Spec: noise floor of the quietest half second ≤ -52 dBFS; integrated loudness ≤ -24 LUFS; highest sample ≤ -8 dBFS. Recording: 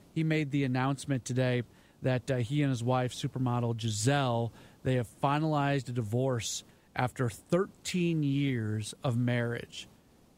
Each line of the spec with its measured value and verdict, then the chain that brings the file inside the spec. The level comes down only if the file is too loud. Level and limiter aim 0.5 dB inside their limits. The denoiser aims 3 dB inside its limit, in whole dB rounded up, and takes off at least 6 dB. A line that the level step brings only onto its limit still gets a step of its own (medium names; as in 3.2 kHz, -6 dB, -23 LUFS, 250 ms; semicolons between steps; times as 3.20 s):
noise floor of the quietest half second -61 dBFS: pass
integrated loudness -31.5 LUFS: pass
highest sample -15.0 dBFS: pass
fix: none needed